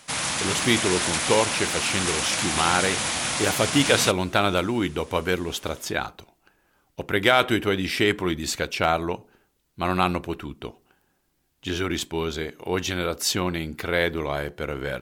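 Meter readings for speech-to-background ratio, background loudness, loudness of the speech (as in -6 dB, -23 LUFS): -0.5 dB, -24.5 LUFS, -25.0 LUFS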